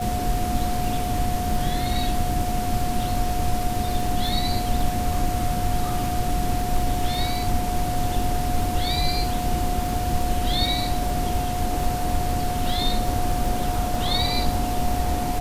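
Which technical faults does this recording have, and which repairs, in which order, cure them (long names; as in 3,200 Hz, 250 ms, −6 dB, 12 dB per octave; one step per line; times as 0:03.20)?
surface crackle 31 per second −27 dBFS
whistle 720 Hz −27 dBFS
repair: click removal
notch filter 720 Hz, Q 30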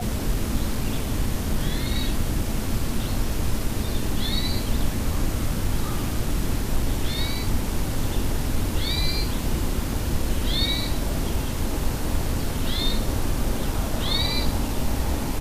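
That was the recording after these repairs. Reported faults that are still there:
none of them is left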